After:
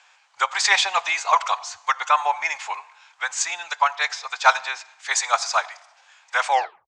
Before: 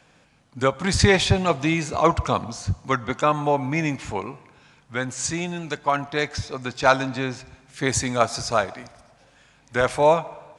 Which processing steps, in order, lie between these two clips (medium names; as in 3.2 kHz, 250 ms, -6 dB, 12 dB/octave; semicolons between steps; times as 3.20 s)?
tape stop on the ending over 0.58 s; elliptic band-pass 850–7600 Hz, stop band 50 dB; time stretch by phase-locked vocoder 0.65×; trim +6 dB